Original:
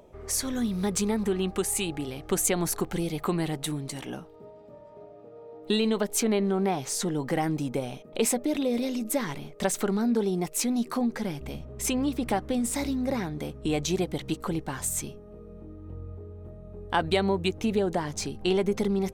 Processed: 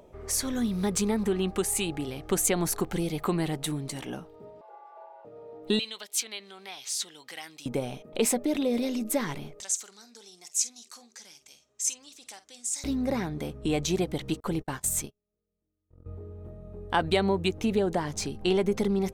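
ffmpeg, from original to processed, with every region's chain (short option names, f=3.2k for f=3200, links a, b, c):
-filter_complex "[0:a]asettb=1/sr,asplit=3[a][b][c];[a]atrim=end=4.614[d];[b]atrim=start=4.61:end=5.25,asetpts=PTS-STARTPTS,afade=t=in:d=0.004:c=qsin,afade=t=out:st=0.636:d=0.004:c=qsin,highpass=110,bass=f=250:g=-7,treble=f=4k:g=-9,afreqshift=240[e];[c]atrim=start=5.246[f];[d][e]acrossfade=d=0.004:c1=hsin:c2=qsin[g];[g][f]acrossfade=d=0.004:c1=qsin:c2=hsin,asettb=1/sr,asplit=3[h][i][j];[h]atrim=end=5.794[k];[i]atrim=start=5.79:end=7.66,asetpts=PTS-STARTPTS,afade=t=in:d=0.004:c=qsin,afade=t=out:st=1.866:d=0.004:c=qsin,bandpass=f=3.5k:t=q:w=1.5,aemphasis=mode=production:type=50fm[l];[j]atrim=start=7.656[m];[k][l]acrossfade=d=0.004:c1=hsin:c2=qsin[n];[n][m]acrossfade=d=0.004:c1=qsin:c2=hsin,asettb=1/sr,asplit=3[o][p][q];[o]atrim=end=9.604[r];[p]atrim=start=9.6:end=12.84,asetpts=PTS-STARTPTS,afade=t=in:d=0.004:c=qsin,afade=t=out:st=3.236:d=0.004:c=qsin,acontrast=89,bandpass=f=6.6k:t=q:w=3.3,asplit=2[s][t];[t]adelay=49,volume=-14dB[u];[s][u]amix=inputs=2:normalize=0,atrim=end_sample=142884[v];[q]atrim=start=12.836[w];[r][v]acrossfade=d=0.004:c1=hsin:c2=qsin[x];[x][w]acrossfade=d=0.004:c1=qsin:c2=hsin,asettb=1/sr,asplit=3[y][z][aa];[y]atrim=end=14.404[ab];[z]atrim=start=14.4:end=16.06,asetpts=PTS-STARTPTS,afade=t=in:d=0.004:c=qsin,afade=t=out:st=1.656:d=0.004:c=qsin,agate=range=-40dB:threshold=-36dB:ratio=16:release=100:detection=peak,highshelf=f=9k:g=3.5[ac];[aa]atrim=start=16.056[ad];[ab][ac]acrossfade=d=0.004:c1=hsin:c2=qsin[ae];[ae][ad]acrossfade=d=0.004:c1=qsin:c2=hsin"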